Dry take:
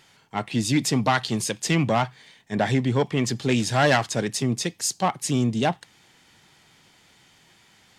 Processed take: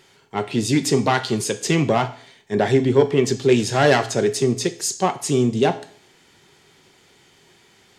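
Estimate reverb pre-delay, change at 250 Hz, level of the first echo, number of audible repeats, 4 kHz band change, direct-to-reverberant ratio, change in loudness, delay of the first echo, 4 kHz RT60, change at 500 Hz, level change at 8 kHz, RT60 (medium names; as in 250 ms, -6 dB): 5 ms, +3.0 dB, no echo, no echo, +1.5 dB, 9.0 dB, +4.0 dB, no echo, 0.50 s, +8.0 dB, +2.0 dB, 0.55 s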